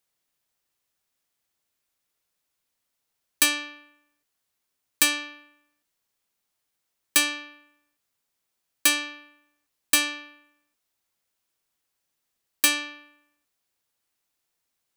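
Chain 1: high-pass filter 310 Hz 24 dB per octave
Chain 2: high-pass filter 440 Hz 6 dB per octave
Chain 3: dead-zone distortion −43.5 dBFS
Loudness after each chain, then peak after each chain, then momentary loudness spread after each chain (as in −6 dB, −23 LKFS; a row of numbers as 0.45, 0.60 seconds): −23.0, −23.5, −23.5 LKFS; −6.0, −6.0, −6.0 dBFS; 17, 17, 11 LU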